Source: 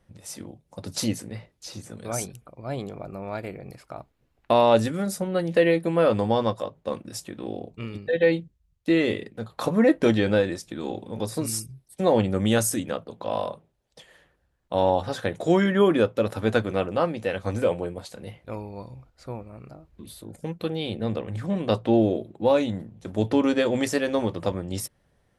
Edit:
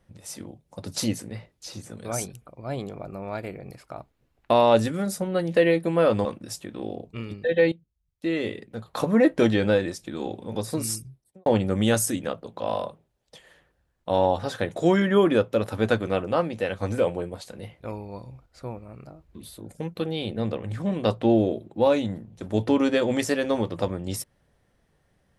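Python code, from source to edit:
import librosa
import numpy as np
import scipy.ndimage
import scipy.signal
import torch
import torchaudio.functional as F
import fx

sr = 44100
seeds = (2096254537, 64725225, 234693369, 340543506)

y = fx.studio_fade_out(x, sr, start_s=11.63, length_s=0.47)
y = fx.edit(y, sr, fx.cut(start_s=6.25, length_s=0.64),
    fx.fade_in_from(start_s=8.36, length_s=1.31, floor_db=-16.5), tone=tone)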